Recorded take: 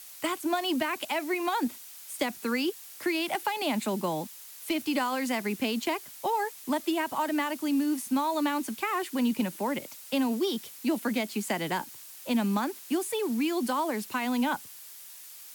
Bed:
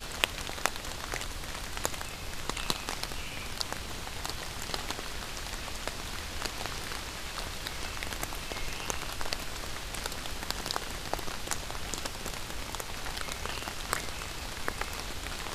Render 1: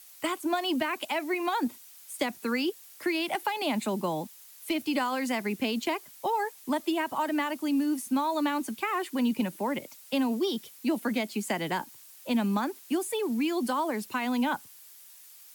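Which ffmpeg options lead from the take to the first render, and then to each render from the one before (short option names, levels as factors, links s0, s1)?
-af "afftdn=nr=6:nf=-47"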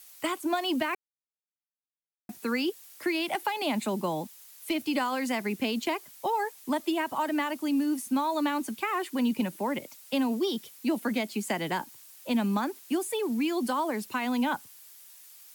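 -filter_complex "[0:a]asplit=3[s0][s1][s2];[s0]atrim=end=0.95,asetpts=PTS-STARTPTS,afade=t=out:st=0.946:d=0.004:c=hsin[s3];[s1]atrim=start=0.95:end=2.29,asetpts=PTS-STARTPTS,volume=0[s4];[s2]atrim=start=2.29,asetpts=PTS-STARTPTS,afade=t=in:d=0.004:c=hsin[s5];[s3][s4][s5]concat=n=3:v=0:a=1"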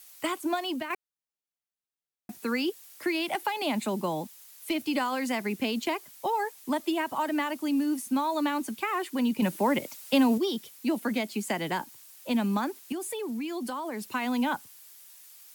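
-filter_complex "[0:a]asettb=1/sr,asplit=3[s0][s1][s2];[s0]atrim=end=9.424[s3];[s1]atrim=start=9.42:end=10.38,asetpts=PTS-STARTPTS,afade=t=in:d=0.004:c=qsin,afade=t=out:st=0.956:d=0.004:c=qsin,acontrast=33[s4];[s2]atrim=start=10.376[s5];[s3][s4]acrossfade=d=0.004:c1=hsin:c2=qsin[s6];[s6][s5]acrossfade=d=0.004:c1=qsin:c2=hsin,asettb=1/sr,asplit=3[s7][s8][s9];[s7]atrim=end=12.924[s10];[s8]atrim=start=12.92:end=14.12,asetpts=PTS-STARTPTS,afade=t=in:d=0.004:c=qsin,afade=t=out:st=1.196:d=0.004:c=qsin,acompressor=threshold=0.0282:ratio=4:attack=3.2:release=140:knee=1:detection=peak[s11];[s9]atrim=start=14.116[s12];[s10][s11]acrossfade=d=0.004:c1=hsin:c2=qsin[s13];[s13][s12]acrossfade=d=0.004:c1=qsin:c2=hsin,asplit=2[s14][s15];[s14]atrim=end=0.9,asetpts=PTS-STARTPTS,afade=t=out:st=0.47:d=0.43:silence=0.398107[s16];[s15]atrim=start=0.9,asetpts=PTS-STARTPTS,afade=t=in:d=0.004:c=hsin:silence=0.398107[s17];[s16][s17]concat=n=2:v=0:a=1"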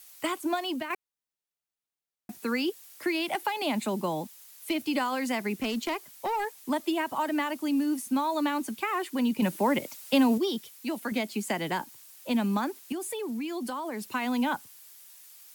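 -filter_complex "[0:a]asettb=1/sr,asplit=3[s0][s1][s2];[s0]atrim=end=5.584[s3];[s1]atrim=start=5.58:end=6.7,asetpts=PTS-STARTPTS,afade=t=in:d=0.004:c=qsin,afade=t=out:st=1.116:d=0.004:c=qsin,volume=18.8,asoftclip=hard,volume=0.0531[s4];[s2]atrim=start=6.696[s5];[s3][s4]acrossfade=d=0.004:c1=hsin:c2=qsin[s6];[s6][s5]acrossfade=d=0.004:c1=qsin:c2=hsin,asettb=1/sr,asplit=3[s7][s8][s9];[s7]atrim=end=10.604[s10];[s8]atrim=start=10.6:end=11.12,asetpts=PTS-STARTPTS,afade=t=in:d=0.004:c=qsin,afade=t=out:st=0.516:d=0.004:c=qsin,equalizer=f=260:t=o:w=2.5:g=-5.5[s11];[s9]atrim=start=11.116[s12];[s10][s11]acrossfade=d=0.004:c1=hsin:c2=qsin[s13];[s13][s12]acrossfade=d=0.004:c1=qsin:c2=hsin"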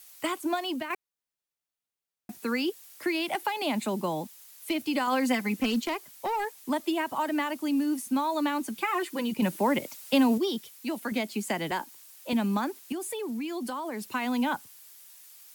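-filter_complex "[0:a]asettb=1/sr,asplit=3[s0][s1][s2];[s0]atrim=end=5.074[s3];[s1]atrim=start=5.07:end=5.81,asetpts=PTS-STARTPTS,afade=t=in:d=0.004:c=qsin,afade=t=out:st=0.736:d=0.004:c=qsin,aecho=1:1:3.9:0.76,atrim=end_sample=32634[s4];[s2]atrim=start=5.806[s5];[s3][s4]acrossfade=d=0.004:c1=hsin:c2=qsin[s6];[s6][s5]acrossfade=d=0.004:c1=qsin:c2=hsin,asettb=1/sr,asplit=3[s7][s8][s9];[s7]atrim=end=8.754[s10];[s8]atrim=start=8.75:end=9.34,asetpts=PTS-STARTPTS,afade=t=in:d=0.004:c=qsin,afade=t=out:st=0.586:d=0.004:c=qsin,aecho=1:1:5.9:0.65,atrim=end_sample=26019[s11];[s9]atrim=start=9.336[s12];[s10][s11]acrossfade=d=0.004:c1=hsin:c2=qsin[s13];[s13][s12]acrossfade=d=0.004:c1=qsin:c2=hsin,asettb=1/sr,asplit=3[s14][s15][s16];[s14]atrim=end=11.714[s17];[s15]atrim=start=11.71:end=12.33,asetpts=PTS-STARTPTS,afade=t=in:d=0.004:c=qsin,afade=t=out:st=0.616:d=0.004:c=qsin,highpass=240[s18];[s16]atrim=start=12.326[s19];[s17][s18]acrossfade=d=0.004:c1=hsin:c2=qsin[s20];[s20][s19]acrossfade=d=0.004:c1=qsin:c2=hsin"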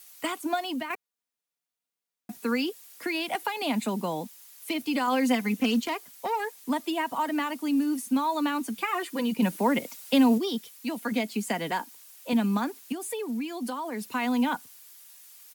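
-af "highpass=73,aecho=1:1:4.2:0.39"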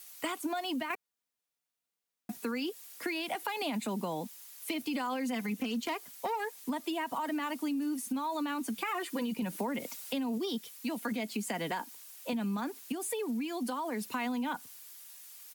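-af "alimiter=limit=0.0841:level=0:latency=1:release=25,acompressor=threshold=0.0282:ratio=6"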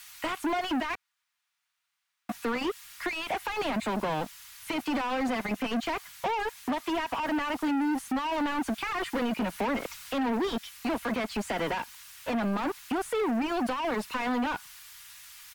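-filter_complex "[0:a]asplit=2[s0][s1];[s1]highpass=f=720:p=1,volume=17.8,asoftclip=type=tanh:threshold=0.0841[s2];[s0][s2]amix=inputs=2:normalize=0,lowpass=f=1400:p=1,volume=0.501,acrossover=split=130|1000[s3][s4][s5];[s4]acrusher=bits=4:mix=0:aa=0.5[s6];[s3][s6][s5]amix=inputs=3:normalize=0"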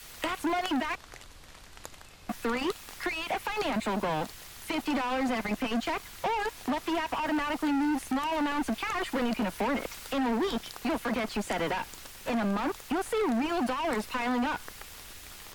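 -filter_complex "[1:a]volume=0.237[s0];[0:a][s0]amix=inputs=2:normalize=0"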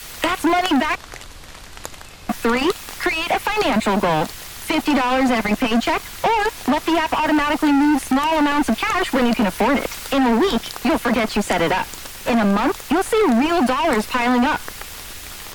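-af "volume=3.98"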